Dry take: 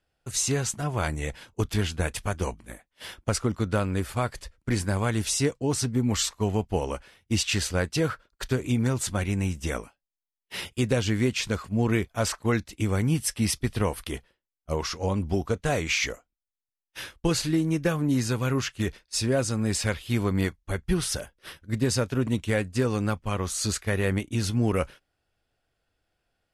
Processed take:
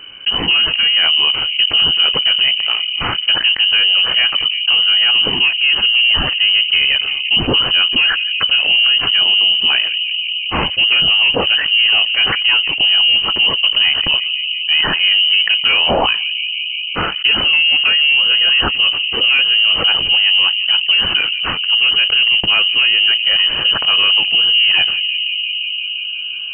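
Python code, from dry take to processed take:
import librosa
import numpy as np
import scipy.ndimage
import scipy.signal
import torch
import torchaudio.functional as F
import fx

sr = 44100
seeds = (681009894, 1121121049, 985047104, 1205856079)

p1 = fx.low_shelf(x, sr, hz=220.0, db=8.0)
p2 = fx.leveller(p1, sr, passes=2)
p3 = p2 + fx.echo_bbd(p2, sr, ms=173, stages=1024, feedback_pct=72, wet_db=-22.0, dry=0)
p4 = fx.freq_invert(p3, sr, carrier_hz=3000)
p5 = fx.env_flatten(p4, sr, amount_pct=70)
y = p5 * librosa.db_to_amplitude(-1.0)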